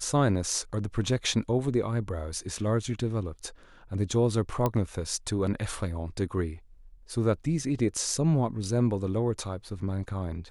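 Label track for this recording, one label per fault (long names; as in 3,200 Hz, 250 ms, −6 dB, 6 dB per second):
4.660000	4.660000	click −13 dBFS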